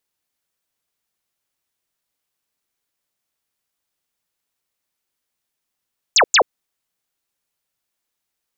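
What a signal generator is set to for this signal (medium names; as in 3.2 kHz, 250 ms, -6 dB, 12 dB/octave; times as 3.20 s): burst of laser zaps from 7.9 kHz, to 380 Hz, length 0.08 s sine, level -9 dB, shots 2, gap 0.10 s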